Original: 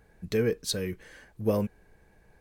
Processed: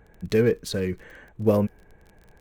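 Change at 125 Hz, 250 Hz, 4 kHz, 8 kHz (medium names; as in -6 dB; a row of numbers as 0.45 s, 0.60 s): +6.0 dB, +6.0 dB, -1.5 dB, -3.5 dB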